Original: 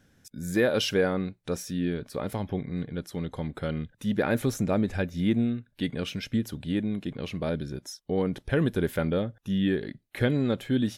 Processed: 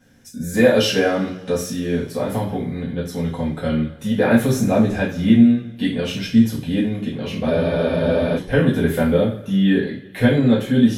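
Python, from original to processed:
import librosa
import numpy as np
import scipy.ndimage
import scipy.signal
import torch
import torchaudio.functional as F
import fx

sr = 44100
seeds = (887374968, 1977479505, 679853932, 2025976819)

y = fx.rev_double_slope(x, sr, seeds[0], early_s=0.38, late_s=1.7, knee_db=-20, drr_db=-8.0)
y = fx.spec_freeze(y, sr, seeds[1], at_s=7.53, hold_s=0.84)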